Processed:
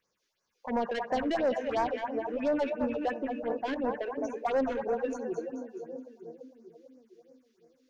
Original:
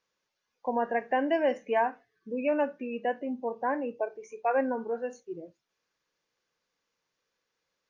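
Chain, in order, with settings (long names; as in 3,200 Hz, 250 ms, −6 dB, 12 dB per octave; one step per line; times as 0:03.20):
echo with a time of its own for lows and highs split 510 Hz, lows 453 ms, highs 214 ms, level −7 dB
soft clipping −27 dBFS, distortion −10 dB
all-pass phaser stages 4, 2.9 Hz, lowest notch 120–3,400 Hz
level +4 dB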